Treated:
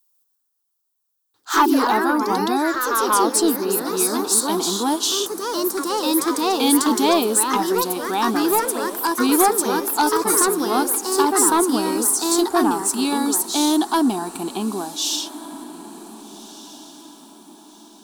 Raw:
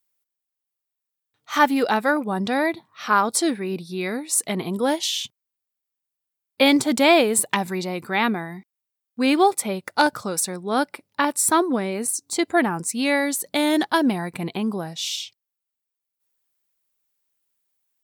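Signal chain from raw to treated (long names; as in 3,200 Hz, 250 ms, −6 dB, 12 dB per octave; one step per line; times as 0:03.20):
bass and treble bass −4 dB, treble +3 dB
in parallel at 0 dB: brickwall limiter −15 dBFS, peak gain reduction 10.5 dB
on the sum: phaser with its sweep stopped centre 540 Hz, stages 6
soft clipping −10 dBFS, distortion −18 dB
on a send: feedback delay with all-pass diffusion 1,569 ms, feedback 41%, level −16 dB
on the sum: delay with pitch and tempo change per echo 149 ms, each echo +2 semitones, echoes 3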